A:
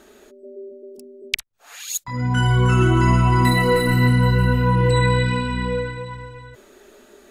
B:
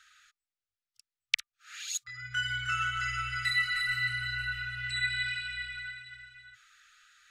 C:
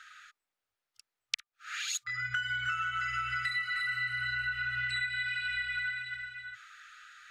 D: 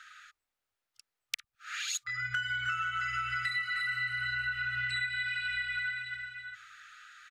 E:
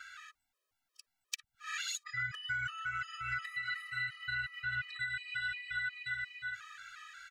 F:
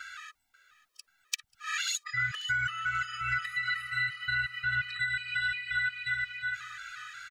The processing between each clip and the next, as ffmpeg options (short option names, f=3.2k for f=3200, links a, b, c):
-filter_complex "[0:a]acrossover=split=320 7200:gain=0.1 1 0.126[a][b][c];[a][b][c]amix=inputs=3:normalize=0,afftfilt=real='re*(1-between(b*sr/4096,120,1200))':imag='im*(1-between(b*sr/4096,120,1200))':win_size=4096:overlap=0.75,volume=-4dB"
-af "equalizer=f=800:w=0.31:g=12,acompressor=threshold=-30dB:ratio=16"
-filter_complex "[0:a]acrossover=split=270[a][b];[a]aecho=1:1:104|208|312|416|520|624:0.251|0.146|0.0845|0.049|0.0284|0.0165[c];[b]volume=23dB,asoftclip=hard,volume=-23dB[d];[c][d]amix=inputs=2:normalize=0"
-af "acompressor=threshold=-38dB:ratio=6,afftfilt=real='re*gt(sin(2*PI*2.8*pts/sr)*(1-2*mod(floor(b*sr/1024/330),2)),0)':imag='im*gt(sin(2*PI*2.8*pts/sr)*(1-2*mod(floor(b*sr/1024/330),2)),0)':win_size=1024:overlap=0.75,volume=5.5dB"
-af "aecho=1:1:538|1076|1614:0.126|0.0504|0.0201,volume=6.5dB"